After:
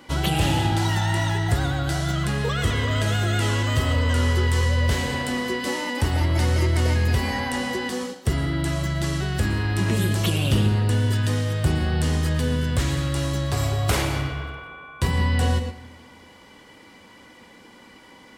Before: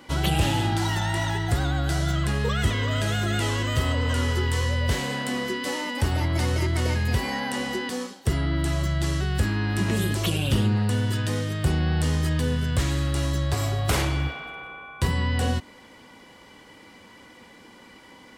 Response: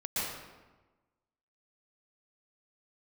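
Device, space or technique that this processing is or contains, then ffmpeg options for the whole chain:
keyed gated reverb: -filter_complex "[0:a]asplit=3[s0][s1][s2];[1:a]atrim=start_sample=2205[s3];[s1][s3]afir=irnorm=-1:irlink=0[s4];[s2]apad=whole_len=810221[s5];[s4][s5]sidechaingate=range=0.447:threshold=0.0126:ratio=16:detection=peak,volume=0.224[s6];[s0][s6]amix=inputs=2:normalize=0"

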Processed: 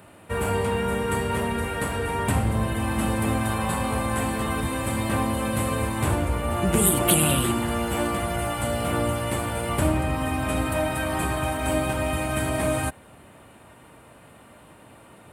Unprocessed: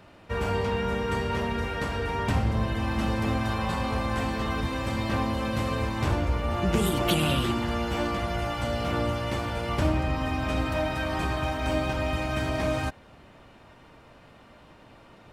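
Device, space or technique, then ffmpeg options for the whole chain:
budget condenser microphone: -af "highpass=64,highshelf=f=7200:t=q:w=3:g=9.5,volume=1.41"

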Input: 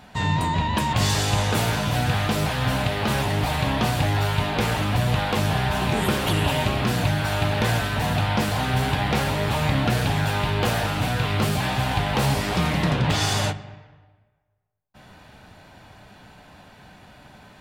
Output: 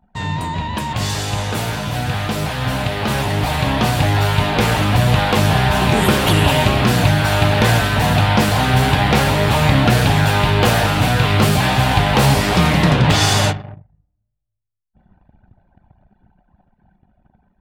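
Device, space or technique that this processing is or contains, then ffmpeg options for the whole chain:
voice memo with heavy noise removal: -af "anlmdn=0.398,dynaudnorm=f=640:g=11:m=3.76"

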